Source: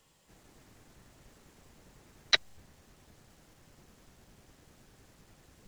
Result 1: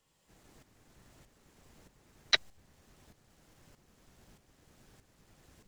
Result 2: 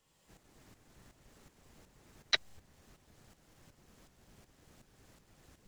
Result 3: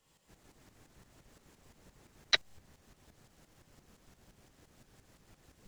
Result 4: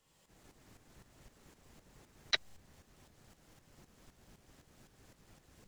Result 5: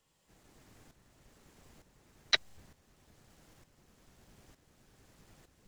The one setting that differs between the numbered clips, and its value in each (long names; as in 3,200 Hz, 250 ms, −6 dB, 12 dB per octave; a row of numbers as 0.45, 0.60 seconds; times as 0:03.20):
shaped tremolo, speed: 1.6, 2.7, 5.8, 3.9, 1.1 Hertz